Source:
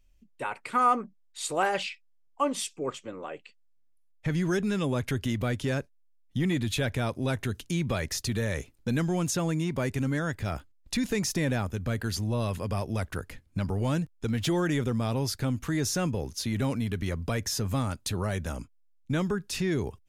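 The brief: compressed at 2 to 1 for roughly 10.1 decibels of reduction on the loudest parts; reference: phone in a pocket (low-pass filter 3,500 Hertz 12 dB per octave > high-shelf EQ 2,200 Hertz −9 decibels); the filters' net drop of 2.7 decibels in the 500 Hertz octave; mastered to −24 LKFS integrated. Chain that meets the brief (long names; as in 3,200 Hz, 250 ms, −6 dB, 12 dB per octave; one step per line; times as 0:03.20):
parametric band 500 Hz −3 dB
downward compressor 2 to 1, threshold −38 dBFS
low-pass filter 3,500 Hz 12 dB per octave
high-shelf EQ 2,200 Hz −9 dB
level +14.5 dB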